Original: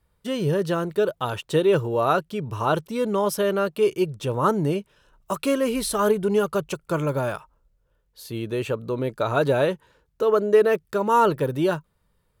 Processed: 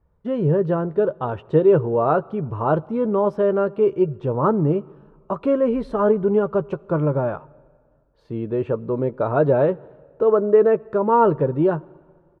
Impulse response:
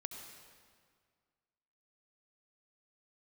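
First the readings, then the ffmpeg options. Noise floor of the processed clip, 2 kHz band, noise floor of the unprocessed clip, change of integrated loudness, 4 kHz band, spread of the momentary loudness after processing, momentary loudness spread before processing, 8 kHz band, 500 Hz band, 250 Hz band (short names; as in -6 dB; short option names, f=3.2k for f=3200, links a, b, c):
-60 dBFS, -5.0 dB, -69 dBFS, +3.0 dB, under -15 dB, 10 LU, 10 LU, under -30 dB, +3.5 dB, +3.5 dB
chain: -filter_complex "[0:a]lowpass=1k,asplit=2[a][b];[b]adelay=13,volume=-13dB[c];[a][c]amix=inputs=2:normalize=0,asplit=2[d][e];[1:a]atrim=start_sample=2205[f];[e][f]afir=irnorm=-1:irlink=0,volume=-17dB[g];[d][g]amix=inputs=2:normalize=0,volume=3dB"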